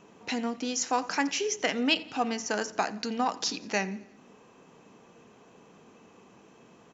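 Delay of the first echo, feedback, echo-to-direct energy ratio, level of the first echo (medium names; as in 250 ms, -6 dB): 87 ms, 56%, -20.5 dB, -22.0 dB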